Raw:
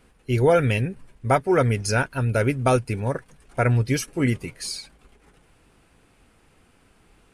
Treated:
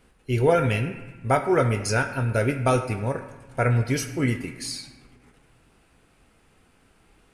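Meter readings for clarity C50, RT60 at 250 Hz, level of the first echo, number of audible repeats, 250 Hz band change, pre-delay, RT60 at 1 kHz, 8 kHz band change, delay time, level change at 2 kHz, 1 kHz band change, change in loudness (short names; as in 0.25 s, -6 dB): 9.0 dB, 2.0 s, none, none, -1.5 dB, 15 ms, 1.2 s, -1.0 dB, none, -0.5 dB, -1.0 dB, -1.5 dB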